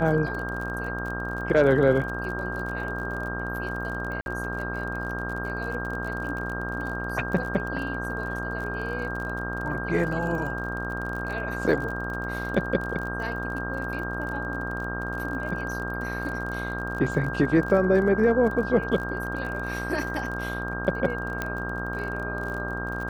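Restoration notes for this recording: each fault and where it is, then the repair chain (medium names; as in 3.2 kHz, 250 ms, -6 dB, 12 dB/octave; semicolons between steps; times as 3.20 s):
buzz 60 Hz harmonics 24 -33 dBFS
crackle 40 per s -33 dBFS
whine 1.6 kHz -32 dBFS
4.21–4.26 s: dropout 51 ms
21.42 s: pop -14 dBFS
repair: de-click; de-hum 60 Hz, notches 24; band-stop 1.6 kHz, Q 30; interpolate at 4.21 s, 51 ms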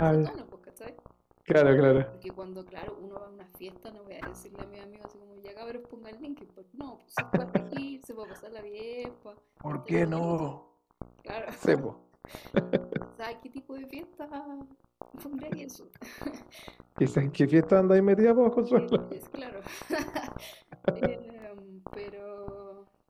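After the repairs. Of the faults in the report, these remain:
21.42 s: pop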